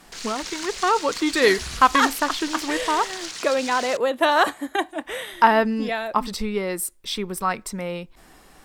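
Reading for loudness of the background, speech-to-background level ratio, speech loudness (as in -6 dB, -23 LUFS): -32.5 LUFS, 10.0 dB, -22.5 LUFS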